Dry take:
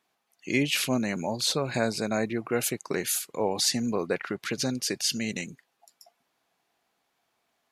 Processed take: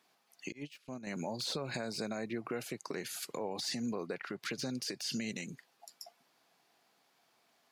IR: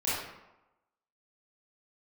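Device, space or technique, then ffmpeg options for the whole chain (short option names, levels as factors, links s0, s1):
broadcast voice chain: -filter_complex "[0:a]highpass=f=110:w=0.5412,highpass=f=110:w=1.3066,deesser=0.7,acompressor=threshold=0.0126:ratio=4,equalizer=f=4800:t=o:w=0.43:g=4.5,alimiter=level_in=2:limit=0.0631:level=0:latency=1:release=94,volume=0.501,asettb=1/sr,asplit=3[s0][s1][s2];[s0]atrim=end=0.524[s3];[s1]atrim=start=0.52:end=1.07,asetpts=PTS-STARTPTS,afade=t=in:d=0.004:c=qsin,afade=t=out:st=0.546:d=0.004:c=qsin,agate=range=0.0355:threshold=0.0126:ratio=16:detection=peak[s4];[s2]atrim=start=1.066[s5];[s3][s4]acrossfade=d=0.004:c1=hsin:c2=qsin[s6];[s6][s5]acrossfade=d=0.004:c1=qsin:c2=hsin,volume=1.41"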